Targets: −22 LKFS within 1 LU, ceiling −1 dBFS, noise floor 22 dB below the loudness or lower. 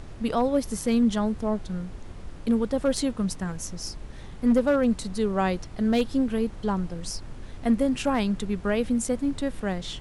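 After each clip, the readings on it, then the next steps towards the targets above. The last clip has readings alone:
share of clipped samples 0.3%; peaks flattened at −14.5 dBFS; background noise floor −41 dBFS; target noise floor −49 dBFS; integrated loudness −26.5 LKFS; sample peak −14.5 dBFS; target loudness −22.0 LKFS
→ clipped peaks rebuilt −14.5 dBFS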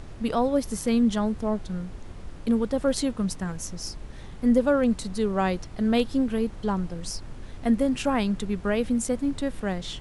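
share of clipped samples 0.0%; background noise floor −41 dBFS; target noise floor −49 dBFS
→ noise reduction from a noise print 8 dB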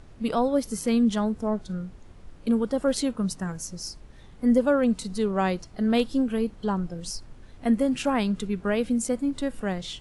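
background noise floor −48 dBFS; target noise floor −49 dBFS
→ noise reduction from a noise print 6 dB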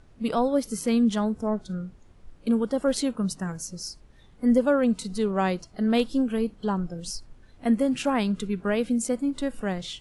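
background noise floor −54 dBFS; integrated loudness −26.0 LKFS; sample peak −10.0 dBFS; target loudness −22.0 LKFS
→ level +4 dB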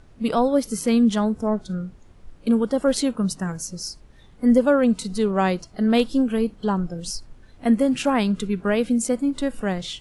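integrated loudness −22.0 LKFS; sample peak −6.0 dBFS; background noise floor −50 dBFS

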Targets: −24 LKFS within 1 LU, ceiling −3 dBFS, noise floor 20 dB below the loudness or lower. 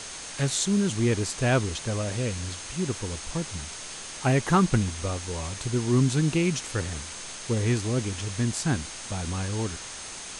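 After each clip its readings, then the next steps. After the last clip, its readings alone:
interfering tone 6,400 Hz; level of the tone −44 dBFS; background noise floor −39 dBFS; target noise floor −48 dBFS; integrated loudness −27.5 LKFS; sample peak −9.0 dBFS; target loudness −24.0 LKFS
→ notch filter 6,400 Hz, Q 30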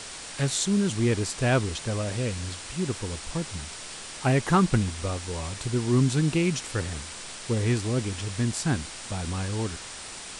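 interfering tone none found; background noise floor −40 dBFS; target noise floor −48 dBFS
→ noise reduction from a noise print 8 dB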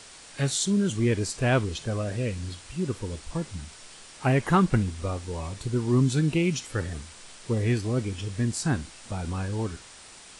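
background noise floor −48 dBFS; integrated loudness −27.5 LKFS; sample peak −9.0 dBFS; target loudness −24.0 LKFS
→ level +3.5 dB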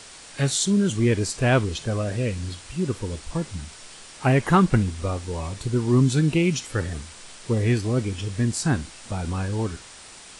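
integrated loudness −24.0 LKFS; sample peak −5.5 dBFS; background noise floor −44 dBFS

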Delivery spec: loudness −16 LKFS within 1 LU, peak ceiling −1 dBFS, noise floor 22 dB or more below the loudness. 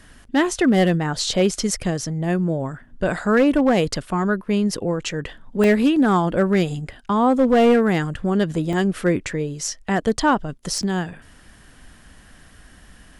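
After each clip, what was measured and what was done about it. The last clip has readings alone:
share of clipped samples 1.4%; peaks flattened at −10.0 dBFS; number of dropouts 3; longest dropout 1.2 ms; integrated loudness −20.5 LKFS; sample peak −10.0 dBFS; target loudness −16.0 LKFS
→ clipped peaks rebuilt −10 dBFS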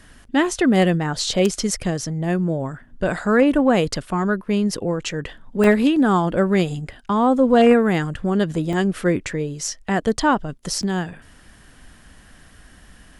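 share of clipped samples 0.0%; number of dropouts 3; longest dropout 1.2 ms
→ repair the gap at 0:05.64/0:08.73/0:10.83, 1.2 ms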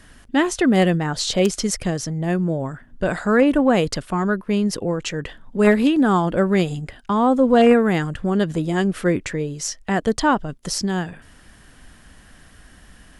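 number of dropouts 0; integrated loudness −20.0 LKFS; sample peak −1.0 dBFS; target loudness −16.0 LKFS
→ level +4 dB
brickwall limiter −1 dBFS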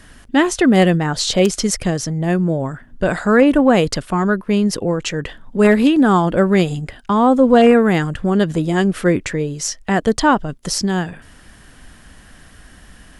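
integrated loudness −16.0 LKFS; sample peak −1.0 dBFS; background noise floor −45 dBFS

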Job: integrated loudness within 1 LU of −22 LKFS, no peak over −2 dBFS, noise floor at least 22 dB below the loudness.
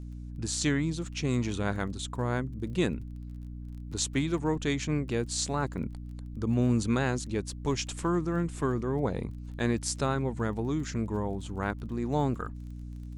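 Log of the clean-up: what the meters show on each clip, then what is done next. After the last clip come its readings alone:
crackle rate 23 per second; mains hum 60 Hz; hum harmonics up to 300 Hz; level of the hum −38 dBFS; integrated loudness −31.0 LKFS; sample peak −12.0 dBFS; target loudness −22.0 LKFS
→ click removal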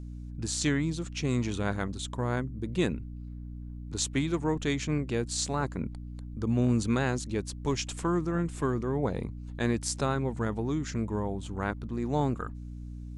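crackle rate 0 per second; mains hum 60 Hz; hum harmonics up to 300 Hz; level of the hum −38 dBFS
→ mains-hum notches 60/120/180/240/300 Hz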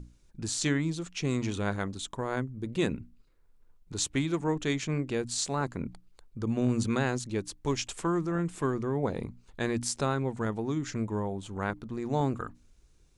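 mains hum none found; integrated loudness −31.5 LKFS; sample peak −12.0 dBFS; target loudness −22.0 LKFS
→ level +9.5 dB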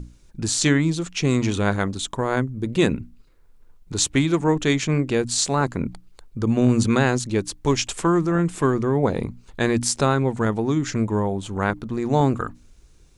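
integrated loudness −22.0 LKFS; sample peak −2.5 dBFS; background noise floor −52 dBFS

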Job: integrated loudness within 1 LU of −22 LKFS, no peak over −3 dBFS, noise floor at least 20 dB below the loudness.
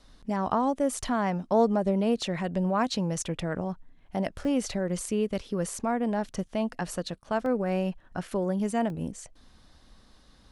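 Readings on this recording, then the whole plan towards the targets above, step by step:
number of dropouts 3; longest dropout 1.2 ms; integrated loudness −29.0 LKFS; sample peak −12.5 dBFS; target loudness −22.0 LKFS
→ repair the gap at 0:04.45/0:07.46/0:08.90, 1.2 ms
level +7 dB

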